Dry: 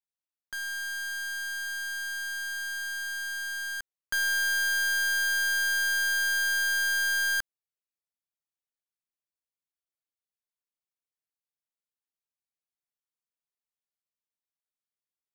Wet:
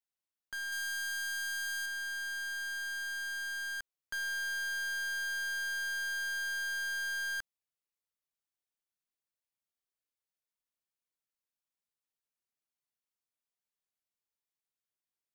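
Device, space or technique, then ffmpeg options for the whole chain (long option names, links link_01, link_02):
saturation between pre-emphasis and de-emphasis: -filter_complex "[0:a]highshelf=frequency=9600:gain=7.5,asoftclip=type=tanh:threshold=-33.5dB,highshelf=frequency=9600:gain=-7.5,asettb=1/sr,asplit=3[link_01][link_02][link_03];[link_01]atrim=end=0.724[link_04];[link_02]atrim=start=0.72:end=1.86,asetpts=PTS-STARTPTS,afade=type=in:duration=0.004:curve=qsin,afade=type=out:start_time=1.136:duration=0.004:curve=qsin,highshelf=frequency=3800:gain=6[link_05];[link_03]atrim=start=1.856[link_06];[link_04][link_05]acrossfade=duration=0.004:curve1=hsin:curve2=qsin[link_07];[link_07][link_06]acrossfade=duration=0.004:curve1=qsin:curve2=hsin,volume=-1.5dB"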